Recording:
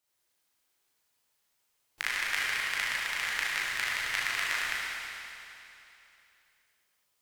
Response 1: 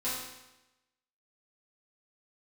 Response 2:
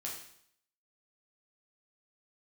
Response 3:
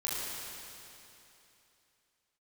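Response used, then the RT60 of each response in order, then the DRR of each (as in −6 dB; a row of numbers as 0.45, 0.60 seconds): 3; 1.0, 0.65, 3.0 seconds; −11.5, −4.0, −7.5 decibels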